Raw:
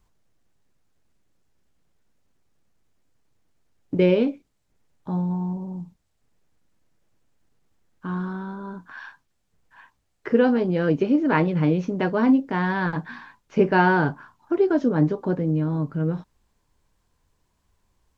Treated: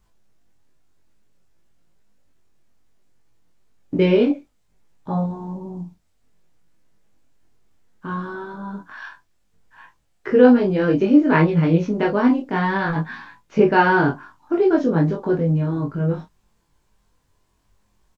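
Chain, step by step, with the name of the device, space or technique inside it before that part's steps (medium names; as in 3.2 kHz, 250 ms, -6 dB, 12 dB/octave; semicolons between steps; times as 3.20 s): double-tracked vocal (doubling 24 ms -4.5 dB; chorus 0.6 Hz, delay 18 ms, depth 3.2 ms); 4.30–5.26 s: dynamic bell 760 Hz, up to +7 dB, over -47 dBFS, Q 0.79; trim +5.5 dB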